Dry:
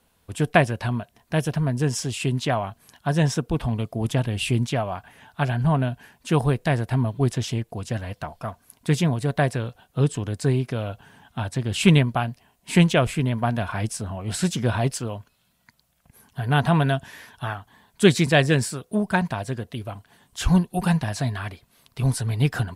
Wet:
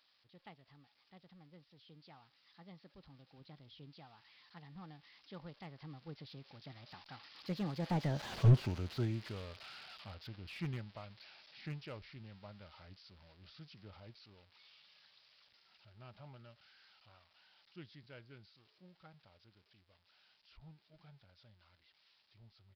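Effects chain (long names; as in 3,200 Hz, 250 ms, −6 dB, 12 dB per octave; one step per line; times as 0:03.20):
spike at every zero crossing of −13.5 dBFS
source passing by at 0:08.33, 54 m/s, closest 4.3 metres
downsampling to 11,025 Hz
slew-rate limiting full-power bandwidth 10 Hz
level +3 dB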